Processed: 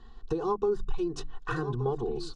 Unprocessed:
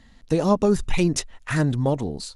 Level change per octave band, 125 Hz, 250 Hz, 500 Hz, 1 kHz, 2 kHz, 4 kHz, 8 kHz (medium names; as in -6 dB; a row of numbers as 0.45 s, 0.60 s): -11.5 dB, -12.5 dB, -6.0 dB, -5.5 dB, -9.5 dB, -12.0 dB, -19.5 dB